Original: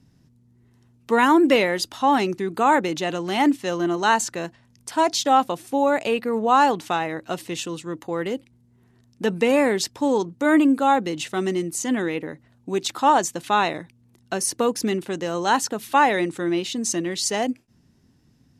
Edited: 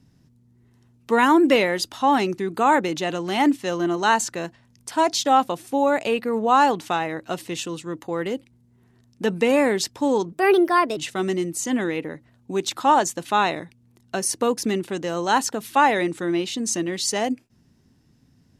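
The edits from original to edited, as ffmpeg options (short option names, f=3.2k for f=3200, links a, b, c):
-filter_complex "[0:a]asplit=3[a][b][c];[a]atrim=end=10.324[d];[b]atrim=start=10.32:end=11.15,asetpts=PTS-STARTPTS,asetrate=56448,aresample=44100,atrim=end_sample=28596,asetpts=PTS-STARTPTS[e];[c]atrim=start=11.146[f];[d][e]acrossfade=d=0.004:c1=hsin:c2=hsin[g];[g][f]acrossfade=d=0.004:c1=hsin:c2=hsin"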